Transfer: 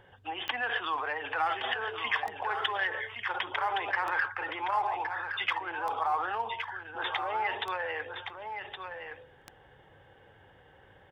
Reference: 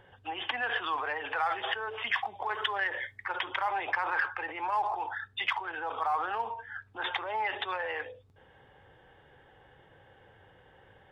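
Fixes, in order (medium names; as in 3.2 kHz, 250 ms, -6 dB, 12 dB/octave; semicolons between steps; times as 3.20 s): de-click; inverse comb 1117 ms -7.5 dB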